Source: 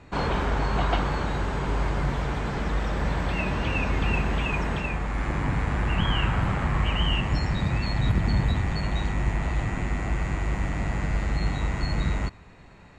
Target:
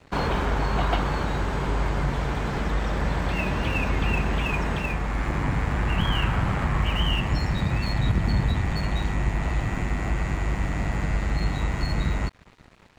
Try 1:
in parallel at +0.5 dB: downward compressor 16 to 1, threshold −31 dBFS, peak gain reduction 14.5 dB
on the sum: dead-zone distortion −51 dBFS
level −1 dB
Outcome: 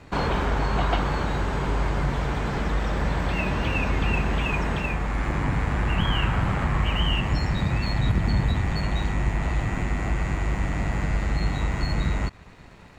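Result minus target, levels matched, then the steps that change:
dead-zone distortion: distortion −8 dB
change: dead-zone distortion −42.5 dBFS

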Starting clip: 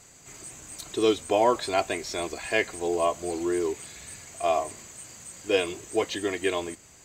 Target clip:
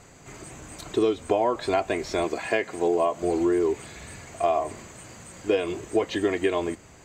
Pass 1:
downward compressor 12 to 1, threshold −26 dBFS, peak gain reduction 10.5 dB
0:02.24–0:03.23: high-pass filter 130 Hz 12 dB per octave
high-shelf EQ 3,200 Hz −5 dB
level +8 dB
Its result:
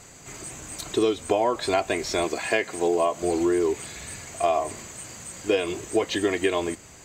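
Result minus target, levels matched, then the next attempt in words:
8,000 Hz band +7.5 dB
downward compressor 12 to 1, threshold −26 dBFS, peak gain reduction 10.5 dB
0:02.24–0:03.23: high-pass filter 130 Hz 12 dB per octave
high-shelf EQ 3,200 Hz −14.5 dB
level +8 dB

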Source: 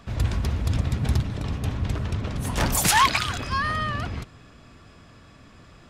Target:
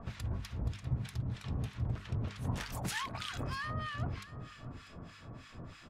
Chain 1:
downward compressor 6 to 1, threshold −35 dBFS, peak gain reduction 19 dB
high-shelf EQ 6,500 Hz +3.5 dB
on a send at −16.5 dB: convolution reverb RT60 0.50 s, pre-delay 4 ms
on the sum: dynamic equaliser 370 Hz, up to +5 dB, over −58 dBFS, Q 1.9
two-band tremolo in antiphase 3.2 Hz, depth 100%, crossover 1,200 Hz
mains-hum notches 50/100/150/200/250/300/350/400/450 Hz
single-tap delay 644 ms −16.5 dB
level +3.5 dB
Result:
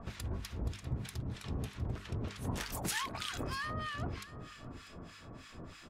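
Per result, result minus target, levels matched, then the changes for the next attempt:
8,000 Hz band +5.5 dB; 500 Hz band +3.5 dB
change: high-shelf EQ 6,500 Hz −4.5 dB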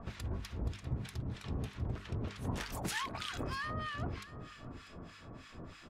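500 Hz band +4.0 dB
change: dynamic equaliser 120 Hz, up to +5 dB, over −58 dBFS, Q 1.9

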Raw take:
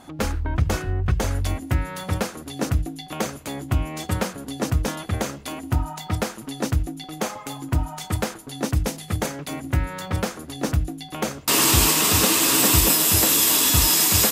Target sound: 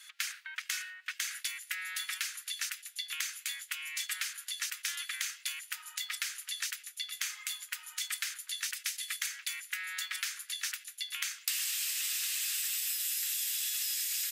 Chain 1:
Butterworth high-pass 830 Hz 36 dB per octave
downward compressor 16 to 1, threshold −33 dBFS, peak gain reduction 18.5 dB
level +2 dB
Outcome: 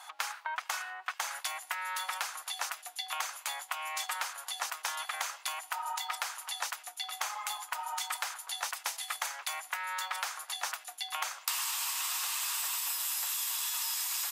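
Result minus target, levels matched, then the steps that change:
1,000 Hz band +16.5 dB
change: Butterworth high-pass 1,700 Hz 36 dB per octave

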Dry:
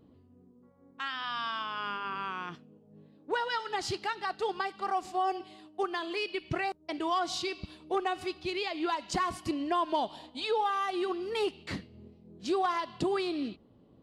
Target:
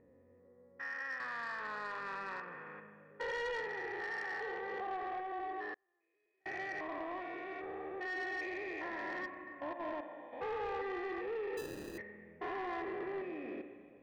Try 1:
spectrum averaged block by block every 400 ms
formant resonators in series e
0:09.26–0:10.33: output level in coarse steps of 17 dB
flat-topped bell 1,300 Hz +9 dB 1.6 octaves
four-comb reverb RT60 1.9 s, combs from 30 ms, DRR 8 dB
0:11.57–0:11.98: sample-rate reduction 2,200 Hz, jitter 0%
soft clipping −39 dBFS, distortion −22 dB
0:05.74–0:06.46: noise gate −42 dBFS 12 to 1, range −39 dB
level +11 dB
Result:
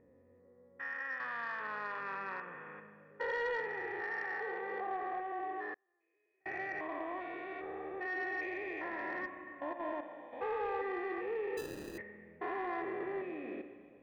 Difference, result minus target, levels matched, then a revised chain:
soft clipping: distortion −8 dB
spectrum averaged block by block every 400 ms
formant resonators in series e
0:09.26–0:10.33: output level in coarse steps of 17 dB
flat-topped bell 1,300 Hz +9 dB 1.6 octaves
four-comb reverb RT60 1.9 s, combs from 30 ms, DRR 8 dB
0:11.57–0:11.98: sample-rate reduction 2,200 Hz, jitter 0%
soft clipping −45 dBFS, distortion −14 dB
0:05.74–0:06.46: noise gate −42 dBFS 12 to 1, range −39 dB
level +11 dB

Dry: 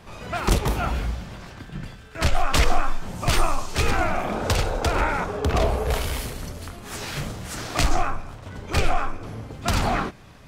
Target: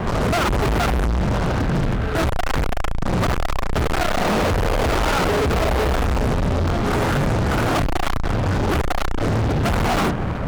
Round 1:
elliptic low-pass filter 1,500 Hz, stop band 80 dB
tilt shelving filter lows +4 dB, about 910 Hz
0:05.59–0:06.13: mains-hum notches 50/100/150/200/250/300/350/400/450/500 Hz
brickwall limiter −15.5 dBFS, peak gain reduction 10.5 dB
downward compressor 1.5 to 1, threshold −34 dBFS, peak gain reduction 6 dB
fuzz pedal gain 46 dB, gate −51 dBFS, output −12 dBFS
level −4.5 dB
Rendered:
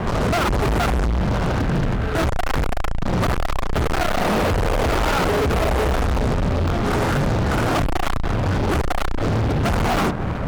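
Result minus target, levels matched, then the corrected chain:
downward compressor: peak gain reduction +3 dB
elliptic low-pass filter 1,500 Hz, stop band 80 dB
tilt shelving filter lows +4 dB, about 910 Hz
0:05.59–0:06.13: mains-hum notches 50/100/150/200/250/300/350/400/450/500 Hz
brickwall limiter −15.5 dBFS, peak gain reduction 10.5 dB
downward compressor 1.5 to 1, threshold −25.5 dBFS, peak gain reduction 3 dB
fuzz pedal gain 46 dB, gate −51 dBFS, output −12 dBFS
level −4.5 dB

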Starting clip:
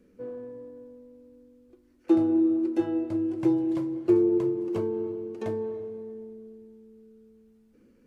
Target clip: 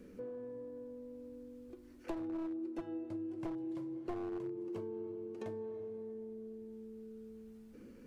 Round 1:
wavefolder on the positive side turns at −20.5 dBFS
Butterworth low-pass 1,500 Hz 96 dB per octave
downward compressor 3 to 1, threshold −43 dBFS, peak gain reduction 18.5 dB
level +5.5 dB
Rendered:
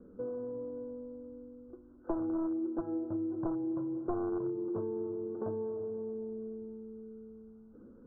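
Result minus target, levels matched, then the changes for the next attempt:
2,000 Hz band −9.0 dB; downward compressor: peak gain reduction −6.5 dB
change: downward compressor 3 to 1, threshold −52.5 dBFS, peak gain reduction 25 dB
remove: Butterworth low-pass 1,500 Hz 96 dB per octave

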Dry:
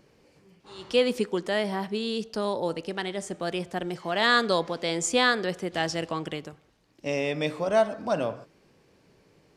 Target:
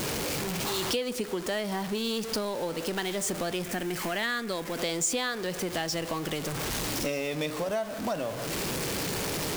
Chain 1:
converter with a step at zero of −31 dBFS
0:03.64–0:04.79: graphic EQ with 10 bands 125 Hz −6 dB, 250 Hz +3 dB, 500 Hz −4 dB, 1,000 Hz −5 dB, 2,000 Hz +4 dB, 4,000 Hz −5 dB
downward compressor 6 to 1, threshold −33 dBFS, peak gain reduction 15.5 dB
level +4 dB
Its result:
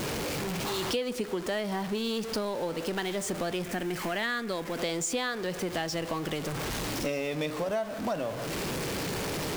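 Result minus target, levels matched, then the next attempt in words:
8,000 Hz band −3.5 dB
converter with a step at zero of −31 dBFS
0:03.64–0:04.79: graphic EQ with 10 bands 125 Hz −6 dB, 250 Hz +3 dB, 500 Hz −4 dB, 1,000 Hz −5 dB, 2,000 Hz +4 dB, 4,000 Hz −5 dB
downward compressor 6 to 1, threshold −33 dBFS, peak gain reduction 15.5 dB
high-shelf EQ 4,400 Hz +6 dB
level +4 dB

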